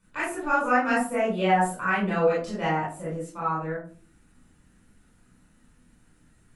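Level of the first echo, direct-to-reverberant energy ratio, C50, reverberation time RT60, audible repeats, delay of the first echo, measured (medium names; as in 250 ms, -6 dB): no echo, -8.0 dB, 3.0 dB, 0.45 s, no echo, no echo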